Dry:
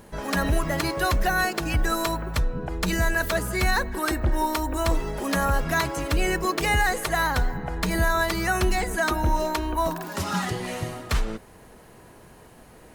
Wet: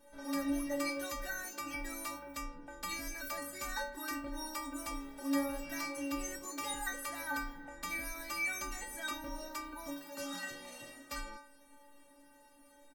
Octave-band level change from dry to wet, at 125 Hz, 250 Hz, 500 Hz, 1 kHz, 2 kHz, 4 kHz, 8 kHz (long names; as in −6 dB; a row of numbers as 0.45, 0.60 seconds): −30.5, −11.0, −16.5, −16.5, −14.5, −13.5, −9.0 decibels